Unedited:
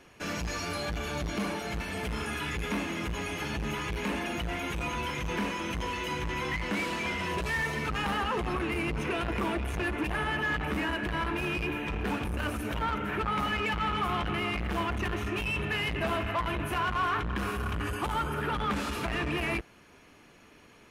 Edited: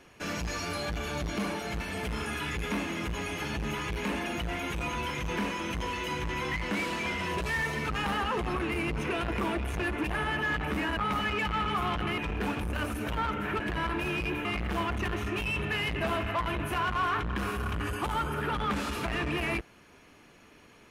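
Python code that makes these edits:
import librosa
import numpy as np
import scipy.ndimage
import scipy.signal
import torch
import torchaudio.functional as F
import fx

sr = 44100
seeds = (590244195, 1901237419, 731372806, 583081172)

y = fx.edit(x, sr, fx.swap(start_s=10.97, length_s=0.85, other_s=13.24, other_length_s=1.21), tone=tone)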